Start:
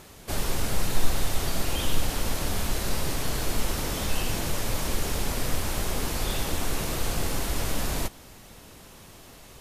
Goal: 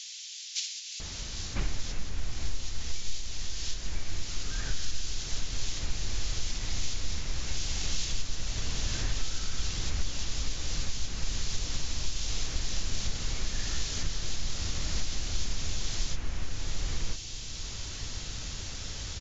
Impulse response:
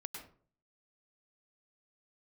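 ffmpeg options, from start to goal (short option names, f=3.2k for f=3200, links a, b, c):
-filter_complex "[0:a]bass=f=250:g=13,treble=f=4k:g=13,acompressor=threshold=-27dB:ratio=6,acrossover=split=4900[a][b];[a]adelay=500[c];[c][b]amix=inputs=2:normalize=0,asplit=2[d][e];[1:a]atrim=start_sample=2205,asetrate=29988,aresample=44100[f];[e][f]afir=irnorm=-1:irlink=0,volume=-6.5dB[g];[d][g]amix=inputs=2:normalize=0,asetrate=22050,aresample=44100,volume=-1.5dB"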